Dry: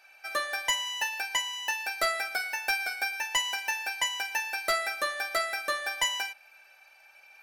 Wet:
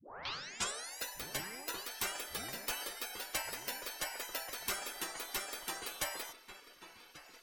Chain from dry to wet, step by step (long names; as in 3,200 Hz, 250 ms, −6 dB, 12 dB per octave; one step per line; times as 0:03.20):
turntable start at the beginning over 1.00 s
feedback echo with a low-pass in the loop 1,138 ms, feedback 41%, low-pass 1,500 Hz, level −10 dB
gate on every frequency bin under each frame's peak −20 dB weak
level +3.5 dB